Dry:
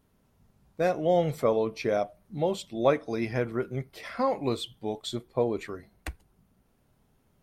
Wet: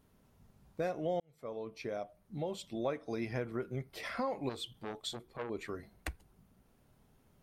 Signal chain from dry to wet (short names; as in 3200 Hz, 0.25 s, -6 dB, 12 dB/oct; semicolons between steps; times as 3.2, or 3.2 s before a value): 1.2–3.22 fade in; compressor 2.5:1, threshold -37 dBFS, peak gain reduction 12.5 dB; 4.49–5.5 core saturation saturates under 1700 Hz